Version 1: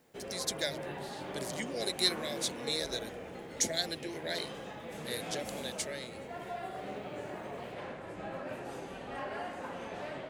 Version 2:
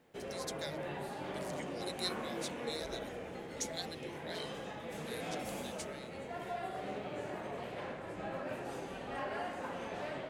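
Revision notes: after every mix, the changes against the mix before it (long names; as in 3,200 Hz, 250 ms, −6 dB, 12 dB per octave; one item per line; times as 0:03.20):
speech −9.5 dB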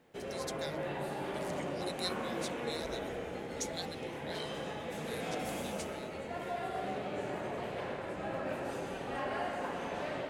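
background: send +11.0 dB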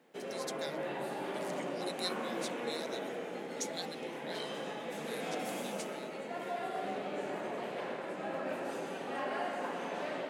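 master: add high-pass filter 180 Hz 24 dB per octave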